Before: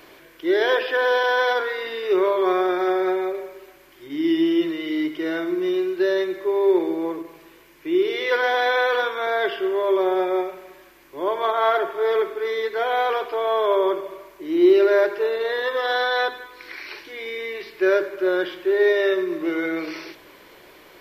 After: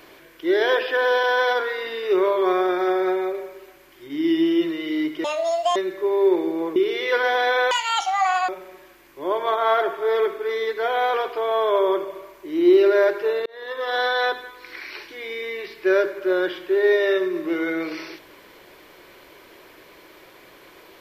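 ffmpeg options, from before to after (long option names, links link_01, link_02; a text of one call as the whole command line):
ffmpeg -i in.wav -filter_complex "[0:a]asplit=7[link_01][link_02][link_03][link_04][link_05][link_06][link_07];[link_01]atrim=end=5.244[link_08];[link_02]atrim=start=5.24:end=6.19,asetpts=PTS-STARTPTS,asetrate=80703,aresample=44100,atrim=end_sample=22893,asetpts=PTS-STARTPTS[link_09];[link_03]atrim=start=6.186:end=7.192[link_10];[link_04]atrim=start=7.948:end=8.904[link_11];[link_05]atrim=start=8.9:end=10.45,asetpts=PTS-STARTPTS,asetrate=87759,aresample=44100,atrim=end_sample=34349,asetpts=PTS-STARTPTS[link_12];[link_06]atrim=start=10.446:end=15.42,asetpts=PTS-STARTPTS,afade=type=out:start_time=4.97:duration=0.004:curve=hsin[link_13];[link_07]atrim=start=15.42,asetpts=PTS-STARTPTS,afade=type=in:duration=0.55[link_14];[link_08][link_09]acrossfade=duration=0.004:curve1=hsin:curve2=hsin[link_15];[link_15][link_10]acrossfade=duration=0.004:curve1=hsin:curve2=hsin[link_16];[link_16][link_11]acrossfade=duration=0.004:curve1=hsin:curve2=hsin[link_17];[link_17][link_12]acrossfade=duration=0.004:curve1=hsin:curve2=hsin[link_18];[link_13][link_14]concat=n=2:v=0:a=1[link_19];[link_18][link_19]acrossfade=duration=0.004:curve1=hsin:curve2=hsin" out.wav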